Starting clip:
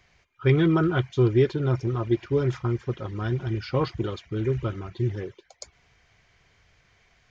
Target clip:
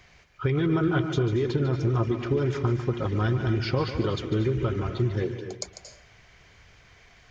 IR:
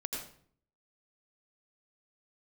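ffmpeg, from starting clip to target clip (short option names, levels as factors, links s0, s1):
-filter_complex "[0:a]alimiter=limit=0.133:level=0:latency=1:release=73,acompressor=threshold=0.0398:ratio=6,asplit=2[s0][s1];[1:a]atrim=start_sample=2205,adelay=147[s2];[s1][s2]afir=irnorm=-1:irlink=0,volume=0.355[s3];[s0][s3]amix=inputs=2:normalize=0,volume=2.11"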